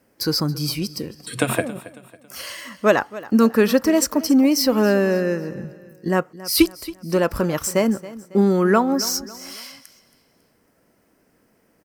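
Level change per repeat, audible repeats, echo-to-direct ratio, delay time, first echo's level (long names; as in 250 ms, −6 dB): −7.5 dB, 3, −16.5 dB, 275 ms, −17.5 dB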